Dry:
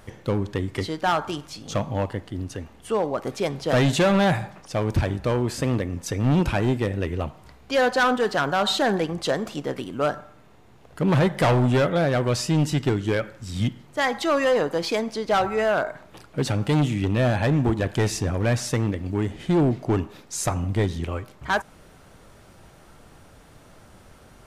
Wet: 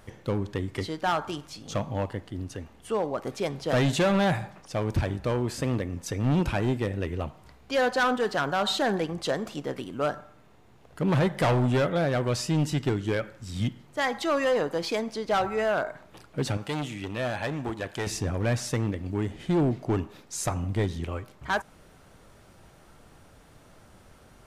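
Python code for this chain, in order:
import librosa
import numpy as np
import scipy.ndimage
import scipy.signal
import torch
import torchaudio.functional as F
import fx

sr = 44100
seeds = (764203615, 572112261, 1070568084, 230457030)

y = fx.low_shelf(x, sr, hz=340.0, db=-11.5, at=(16.57, 18.07))
y = y * librosa.db_to_amplitude(-4.0)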